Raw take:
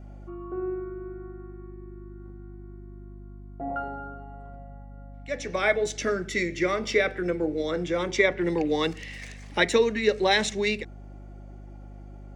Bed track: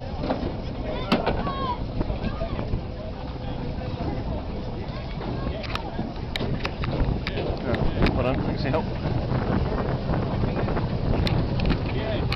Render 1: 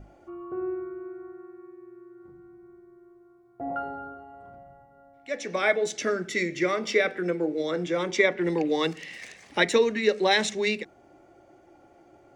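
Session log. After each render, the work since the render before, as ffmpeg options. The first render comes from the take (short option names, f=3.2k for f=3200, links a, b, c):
-af "bandreject=f=50:t=h:w=6,bandreject=f=100:t=h:w=6,bandreject=f=150:t=h:w=6,bandreject=f=200:t=h:w=6,bandreject=f=250:t=h:w=6"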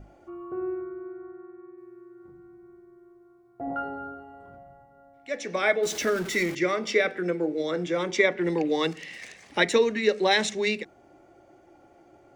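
-filter_complex "[0:a]asettb=1/sr,asplit=3[a][b][c];[a]atrim=end=0.814[d];[b]atrim=start=0.81:end=1.78,asetpts=PTS-STARTPTS,afade=t=in:d=0.004:c=qsin,afade=t=out:st=0.966:d=0.004:c=qsin,lowpass=2.4k[e];[c]atrim=start=1.776[f];[d][e]acrossfade=d=0.004:c1=hsin:c2=qsin[g];[g][f]acrossfade=d=0.004:c1=qsin:c2=hsin,asettb=1/sr,asplit=3[h][i][j];[h]atrim=end=3.654[k];[i]atrim=start=3.65:end=4.57,asetpts=PTS-STARTPTS,afade=t=in:d=0.004:c=qsin,afade=t=out:st=0.916:d=0.004:c=qsin,asplit=2[l][m];[m]adelay=22,volume=-6dB[n];[l][n]amix=inputs=2:normalize=0,atrim=end_sample=40572[o];[j]atrim=start=4.566[p];[k][o]acrossfade=d=0.004:c1=hsin:c2=qsin[q];[q][p]acrossfade=d=0.004:c1=qsin:c2=hsin,asettb=1/sr,asplit=3[r][s][t];[r]atrim=end=5.834[u];[s]atrim=start=5.83:end=6.55,asetpts=PTS-STARTPTS,afade=t=in:d=0.004:c=qsin,afade=t=out:st=0.716:d=0.004:c=qsin,aeval=exprs='val(0)+0.5*0.0224*sgn(val(0))':c=same[v];[t]atrim=start=6.546[w];[u][v]acrossfade=d=0.004:c1=hsin:c2=qsin[x];[x][w]acrossfade=d=0.004:c1=qsin:c2=hsin"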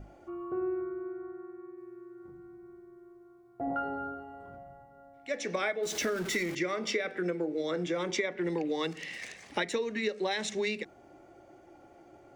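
-af "acompressor=threshold=-28dB:ratio=10"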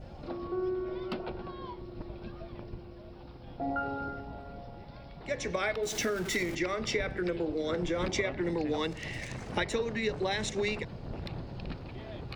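-filter_complex "[1:a]volume=-16.5dB[a];[0:a][a]amix=inputs=2:normalize=0"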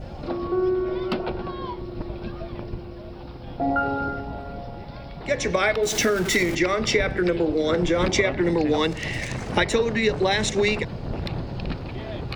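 -af "volume=10dB"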